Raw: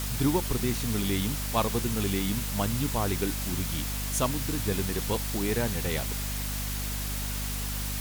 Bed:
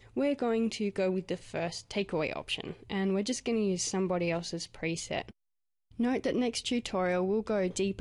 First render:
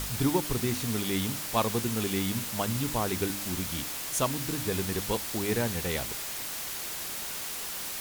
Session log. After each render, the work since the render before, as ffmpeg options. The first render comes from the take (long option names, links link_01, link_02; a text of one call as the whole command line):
ffmpeg -i in.wav -af "bandreject=frequency=50:width_type=h:width=4,bandreject=frequency=100:width_type=h:width=4,bandreject=frequency=150:width_type=h:width=4,bandreject=frequency=200:width_type=h:width=4,bandreject=frequency=250:width_type=h:width=4,bandreject=frequency=300:width_type=h:width=4" out.wav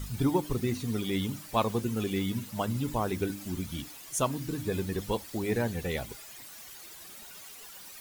ffmpeg -i in.wav -af "afftdn=noise_reduction=14:noise_floor=-36" out.wav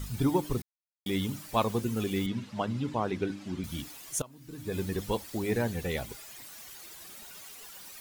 ffmpeg -i in.wav -filter_complex "[0:a]asettb=1/sr,asplit=3[link_01][link_02][link_03];[link_01]atrim=end=2.264[link_04];[link_02]atrim=start=2.26:end=3.64,asetpts=PTS-STARTPTS,afade=type=in:duration=0.004:curve=qsin,afade=type=out:start_time=1.376:duration=0.004:curve=qsin,highpass=110,lowpass=4300[link_05];[link_03]atrim=start=3.636[link_06];[link_04][link_05]acrossfade=duration=0.004:curve1=hsin:curve2=qsin[link_07];[link_07][link_06]acrossfade=duration=0.004:curve1=qsin:curve2=hsin,asplit=4[link_08][link_09][link_10][link_11];[link_08]atrim=end=0.62,asetpts=PTS-STARTPTS,afade=type=out:start_time=0.616:duration=0.004:curve=hsin[link_12];[link_09]atrim=start=0.62:end=1.06,asetpts=PTS-STARTPTS,volume=0[link_13];[link_10]atrim=start=1.06:end=4.22,asetpts=PTS-STARTPTS,afade=type=in:duration=0.004:curve=hsin,afade=type=out:start_time=3.156:duration=0.004:curve=hsin:silence=0.0794328[link_14];[link_11]atrim=start=4.22,asetpts=PTS-STARTPTS,afade=type=in:duration=0.6:curve=qua:silence=0.0794328[link_15];[link_12][link_13][link_14][link_15]concat=n=4:v=0:a=1" out.wav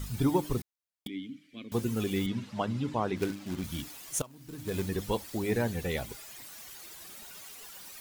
ffmpeg -i in.wav -filter_complex "[0:a]asettb=1/sr,asplit=3[link_01][link_02][link_03];[link_01]atrim=end=1.074[link_04];[link_02]atrim=start=1.07:end=1.72,asetpts=PTS-STARTPTS,afade=type=in:duration=0.004:curve=qsin,afade=type=out:start_time=0.646:duration=0.004:curve=qsin,asplit=3[link_05][link_06][link_07];[link_05]bandpass=frequency=270:width_type=q:width=8,volume=0dB[link_08];[link_06]bandpass=frequency=2290:width_type=q:width=8,volume=-6dB[link_09];[link_07]bandpass=frequency=3010:width_type=q:width=8,volume=-9dB[link_10];[link_08][link_09][link_10]amix=inputs=3:normalize=0[link_11];[link_03]atrim=start=1.716[link_12];[link_04][link_11]acrossfade=duration=0.004:curve1=hsin:curve2=qsin[link_13];[link_13][link_12]acrossfade=duration=0.004:curve1=qsin:curve2=hsin,asplit=3[link_14][link_15][link_16];[link_14]afade=type=out:start_time=3.16:duration=0.02[link_17];[link_15]acrusher=bits=3:mode=log:mix=0:aa=0.000001,afade=type=in:start_time=3.16:duration=0.02,afade=type=out:start_time=4.87:duration=0.02[link_18];[link_16]afade=type=in:start_time=4.87:duration=0.02[link_19];[link_17][link_18][link_19]amix=inputs=3:normalize=0" out.wav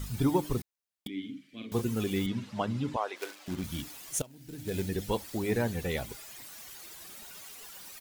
ffmpeg -i in.wav -filter_complex "[0:a]asplit=3[link_01][link_02][link_03];[link_01]afade=type=out:start_time=1.16:duration=0.02[link_04];[link_02]asplit=2[link_05][link_06];[link_06]adelay=45,volume=-5dB[link_07];[link_05][link_07]amix=inputs=2:normalize=0,afade=type=in:start_time=1.16:duration=0.02,afade=type=out:start_time=1.8:duration=0.02[link_08];[link_03]afade=type=in:start_time=1.8:duration=0.02[link_09];[link_04][link_08][link_09]amix=inputs=3:normalize=0,asettb=1/sr,asplit=3[link_10][link_11][link_12];[link_10]atrim=end=2.964[link_13];[link_11]atrim=start=2.96:end=3.48,asetpts=PTS-STARTPTS,afade=type=in:duration=0.004:curve=qsin,afade=type=out:start_time=0.516:duration=0.004:curve=qsin,highpass=frequency=500:width=0.5412,highpass=frequency=500:width=1.3066[link_14];[link_12]atrim=start=3.476[link_15];[link_13][link_14]acrossfade=duration=0.004:curve1=hsin:curve2=qsin[link_16];[link_16][link_15]acrossfade=duration=0.004:curve1=qsin:curve2=hsin,asettb=1/sr,asplit=3[link_17][link_18][link_19];[link_17]atrim=end=4.174[link_20];[link_18]atrim=start=4.17:end=5.09,asetpts=PTS-STARTPTS,afade=type=in:duration=0.004:curve=qsin,afade=type=out:start_time=0.916:duration=0.004:curve=qsin,equalizer=frequency=1100:width=3.8:gain=-13.5[link_21];[link_19]atrim=start=5.086[link_22];[link_20][link_21]acrossfade=duration=0.004:curve1=hsin:curve2=qsin[link_23];[link_23][link_22]acrossfade=duration=0.004:curve1=qsin:curve2=hsin" out.wav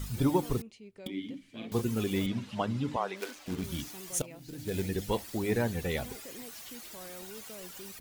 ffmpeg -i in.wav -i bed.wav -filter_complex "[1:a]volume=-18.5dB[link_01];[0:a][link_01]amix=inputs=2:normalize=0" out.wav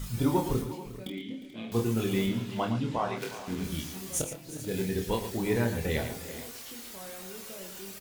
ffmpeg -i in.wav -filter_complex "[0:a]asplit=2[link_01][link_02];[link_02]adelay=26,volume=-4dB[link_03];[link_01][link_03]amix=inputs=2:normalize=0,aecho=1:1:49|114|357|435:0.178|0.316|0.168|0.158" out.wav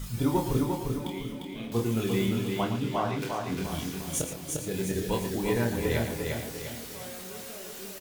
ffmpeg -i in.wav -af "aecho=1:1:350|700|1050|1400|1750:0.631|0.265|0.111|0.0467|0.0196" out.wav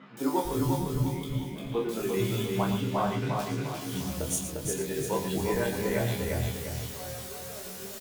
ffmpeg -i in.wav -filter_complex "[0:a]asplit=2[link_01][link_02];[link_02]adelay=15,volume=-5dB[link_03];[link_01][link_03]amix=inputs=2:normalize=0,acrossover=split=240|2500[link_04][link_05][link_06];[link_06]adelay=170[link_07];[link_04]adelay=450[link_08];[link_08][link_05][link_07]amix=inputs=3:normalize=0" out.wav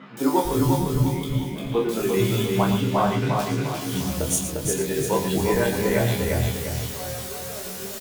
ffmpeg -i in.wav -af "volume=7dB" out.wav